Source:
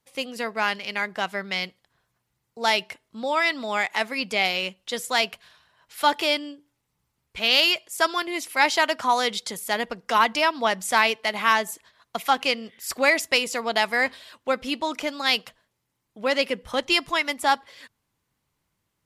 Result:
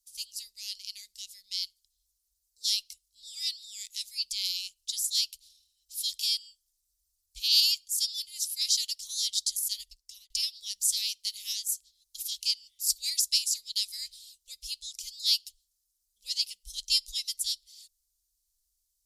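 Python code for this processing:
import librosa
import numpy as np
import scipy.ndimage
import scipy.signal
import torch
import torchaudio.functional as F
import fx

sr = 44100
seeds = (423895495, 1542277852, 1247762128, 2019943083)

y = fx.edit(x, sr, fx.fade_out_span(start_s=9.69, length_s=0.61), tone=tone)
y = scipy.signal.sosfilt(scipy.signal.cheby2(4, 60, [140.0, 1600.0], 'bandstop', fs=sr, output='sos'), y)
y = fx.dynamic_eq(y, sr, hz=3800.0, q=1.5, threshold_db=-45.0, ratio=4.0, max_db=4)
y = F.gain(torch.from_numpy(y), 5.0).numpy()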